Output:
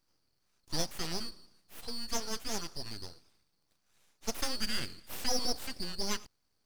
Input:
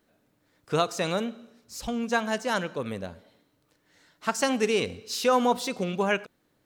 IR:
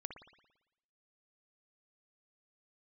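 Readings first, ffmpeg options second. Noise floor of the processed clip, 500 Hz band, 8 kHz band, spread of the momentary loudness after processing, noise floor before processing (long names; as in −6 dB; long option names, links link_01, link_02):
−77 dBFS, −16.5 dB, −1.5 dB, 11 LU, −70 dBFS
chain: -af "afftfilt=real='real(if(lt(b,920),b+92*(1-2*mod(floor(b/92),2)),b),0)':imag='imag(if(lt(b,920),b+92*(1-2*mod(floor(b/92),2)),b),0)':win_size=2048:overlap=0.75,aeval=exprs='abs(val(0))':channel_layout=same,volume=-6.5dB"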